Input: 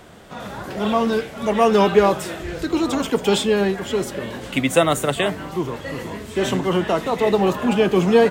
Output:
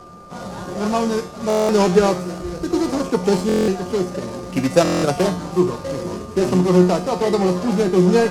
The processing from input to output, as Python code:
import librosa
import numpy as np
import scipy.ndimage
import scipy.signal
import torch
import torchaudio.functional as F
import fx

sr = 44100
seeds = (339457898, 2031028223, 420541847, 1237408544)

p1 = scipy.ndimage.median_filter(x, 25, mode='constant')
p2 = fx.rider(p1, sr, range_db=10, speed_s=2.0)
p3 = p1 + (p2 * 10.0 ** (-1.0 / 20.0))
p4 = fx.high_shelf(p3, sr, hz=5700.0, db=-11.5)
p5 = fx.comb_fb(p4, sr, f0_hz=180.0, decay_s=0.51, harmonics='all', damping=0.0, mix_pct=80)
p6 = p5 + 10.0 ** (-48.0 / 20.0) * np.sin(2.0 * np.pi * 1200.0 * np.arange(len(p5)) / sr)
p7 = fx.band_shelf(p6, sr, hz=7500.0, db=15.0, octaves=1.7)
p8 = fx.buffer_glitch(p7, sr, at_s=(1.48, 3.47, 4.83), block=1024, repeats=8)
y = p8 * 10.0 ** (7.0 / 20.0)